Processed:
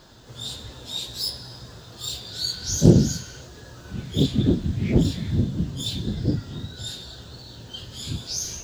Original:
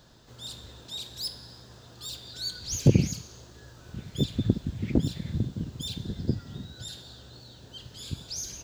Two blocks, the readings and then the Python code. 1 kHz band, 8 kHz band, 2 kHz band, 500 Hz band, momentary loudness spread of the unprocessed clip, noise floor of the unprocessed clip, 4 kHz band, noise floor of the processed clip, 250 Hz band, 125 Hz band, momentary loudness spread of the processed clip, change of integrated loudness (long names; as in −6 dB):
+7.5 dB, +6.5 dB, +5.5 dB, +7.5 dB, 21 LU, −51 dBFS, +6.5 dB, −44 dBFS, +7.0 dB, +5.5 dB, 20 LU, +6.5 dB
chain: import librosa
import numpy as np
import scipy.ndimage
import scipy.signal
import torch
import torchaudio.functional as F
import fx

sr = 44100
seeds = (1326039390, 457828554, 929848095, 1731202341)

y = fx.phase_scramble(x, sr, seeds[0], window_ms=100)
y = fx.spec_repair(y, sr, seeds[1], start_s=2.43, length_s=0.95, low_hz=1100.0, high_hz=3200.0, source='before')
y = fx.doppler_dist(y, sr, depth_ms=0.3)
y = F.gain(torch.from_numpy(y), 7.0).numpy()